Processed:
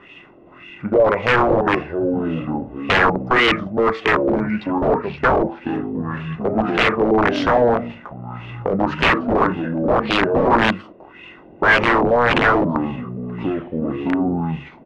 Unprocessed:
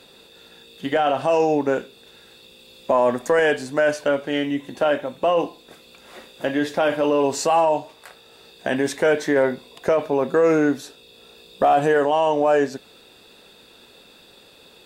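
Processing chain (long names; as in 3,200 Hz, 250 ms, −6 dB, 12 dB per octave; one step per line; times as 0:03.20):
pitch shifter −5 semitones
in parallel at −7.5 dB: soft clipping −24 dBFS, distortion −7 dB
on the sum: delay with pitch and tempo change per echo 250 ms, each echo −5 semitones, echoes 2, each echo −6 dB
wrap-around overflow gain 11.5 dB
auto-filter low-pass sine 1.8 Hz 570–2,800 Hz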